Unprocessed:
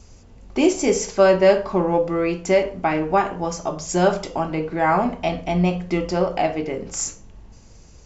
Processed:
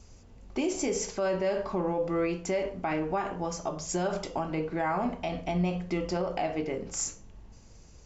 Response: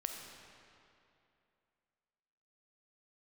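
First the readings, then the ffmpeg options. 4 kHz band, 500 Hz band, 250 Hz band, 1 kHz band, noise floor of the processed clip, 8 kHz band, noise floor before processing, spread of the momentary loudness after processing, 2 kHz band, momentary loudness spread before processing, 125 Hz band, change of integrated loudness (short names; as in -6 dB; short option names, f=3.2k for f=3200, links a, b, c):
-9.0 dB, -11.0 dB, -9.0 dB, -10.5 dB, -53 dBFS, n/a, -47 dBFS, 4 LU, -10.5 dB, 10 LU, -8.5 dB, -10.0 dB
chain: -af "alimiter=limit=-14.5dB:level=0:latency=1:release=82,volume=-6dB"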